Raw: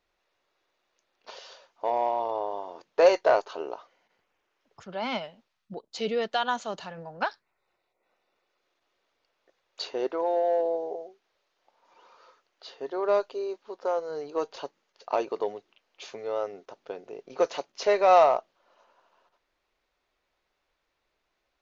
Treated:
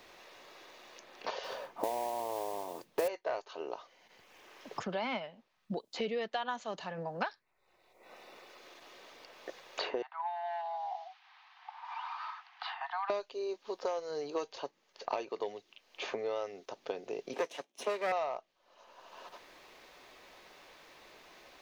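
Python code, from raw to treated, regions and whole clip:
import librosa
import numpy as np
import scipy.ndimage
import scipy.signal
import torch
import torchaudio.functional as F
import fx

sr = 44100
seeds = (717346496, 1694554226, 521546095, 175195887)

y = fx.chain(x, sr, fx.low_shelf(hz=310.0, db=11.0),
    fx.mod_noise(seeds[0], snr_db=15), at=(1.43, 3.08))
y = fx.chain(y, sr, fx.steep_highpass(hz=750.0, slope=96),
    fx.air_absorb(metres=300.0), at=(10.02, 13.1))
y = fx.chain(y, sr, fx.lower_of_two(delay_ms=0.32),
    fx.highpass(hz=220.0, slope=24),
    fx.band_widen(depth_pct=40), at=(17.33, 18.12))
y = fx.notch(y, sr, hz=1400.0, q=12.0)
y = fx.dynamic_eq(y, sr, hz=2100.0, q=1.2, threshold_db=-44.0, ratio=4.0, max_db=4)
y = fx.band_squash(y, sr, depth_pct=100)
y = F.gain(torch.from_numpy(y), -8.0).numpy()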